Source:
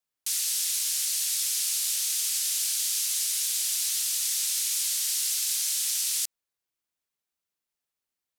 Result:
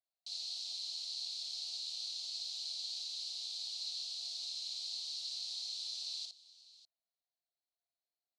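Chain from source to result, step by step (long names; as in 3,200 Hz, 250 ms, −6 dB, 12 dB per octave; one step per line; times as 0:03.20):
pair of resonant band-passes 1,700 Hz, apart 2.6 octaves
high-frequency loss of the air 100 metres
multi-tap delay 55/596 ms −4/−17.5 dB
level +1 dB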